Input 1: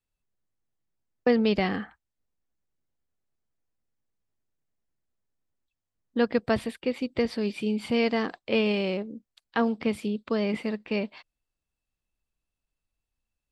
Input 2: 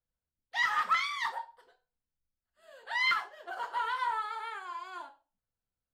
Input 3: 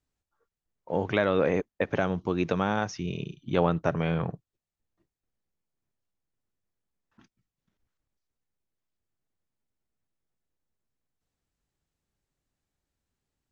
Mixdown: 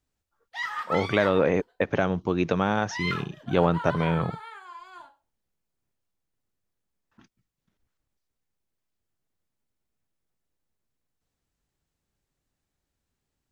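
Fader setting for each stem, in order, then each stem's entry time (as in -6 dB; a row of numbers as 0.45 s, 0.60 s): mute, -3.0 dB, +2.5 dB; mute, 0.00 s, 0.00 s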